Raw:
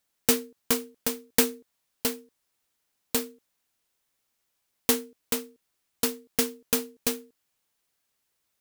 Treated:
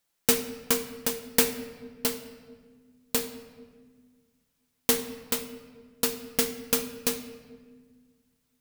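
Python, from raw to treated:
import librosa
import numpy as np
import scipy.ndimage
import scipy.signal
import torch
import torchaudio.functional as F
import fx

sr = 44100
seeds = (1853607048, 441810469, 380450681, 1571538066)

y = fx.room_shoebox(x, sr, seeds[0], volume_m3=1900.0, walls='mixed', distance_m=0.78)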